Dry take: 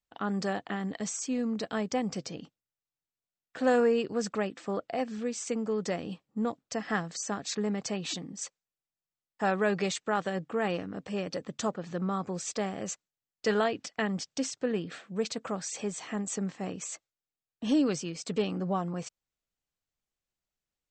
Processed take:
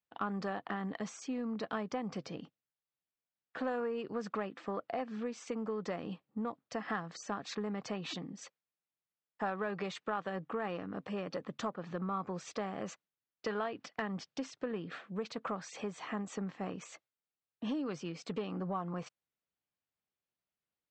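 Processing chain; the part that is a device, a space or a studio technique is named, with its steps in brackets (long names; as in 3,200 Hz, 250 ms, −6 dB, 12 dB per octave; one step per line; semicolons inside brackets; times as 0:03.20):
AM radio (band-pass filter 100–3,500 Hz; downward compressor 6 to 1, threshold −32 dBFS, peak gain reduction 11 dB; soft clipping −22.5 dBFS, distortion −27 dB)
dynamic equaliser 1,100 Hz, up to +7 dB, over −55 dBFS, Q 1.7
level −2 dB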